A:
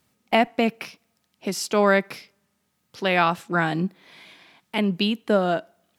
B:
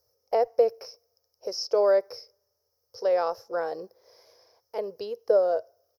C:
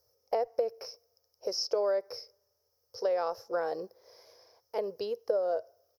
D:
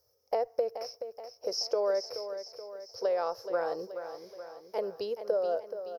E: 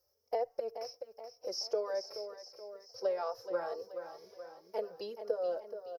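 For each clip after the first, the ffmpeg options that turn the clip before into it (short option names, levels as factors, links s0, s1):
-filter_complex "[0:a]acrossover=split=5400[s0][s1];[s1]acompressor=threshold=0.00224:ratio=4:attack=1:release=60[s2];[s0][s2]amix=inputs=2:normalize=0,firequalizer=gain_entry='entry(110,0);entry(150,-26);entry(270,-21);entry(480,14);entry(710,-1);entry(2500,-21);entry(3600,-19);entry(5300,14);entry(8000,-21);entry(12000,5)':delay=0.05:min_phase=1,volume=0.531"
-af "acompressor=threshold=0.0501:ratio=6"
-af "aecho=1:1:427|854|1281|1708|2135|2562:0.316|0.168|0.0888|0.0471|0.025|0.0132"
-filter_complex "[0:a]asplit=2[s0][s1];[s1]adelay=3.4,afreqshift=2[s2];[s0][s2]amix=inputs=2:normalize=1,volume=0.794"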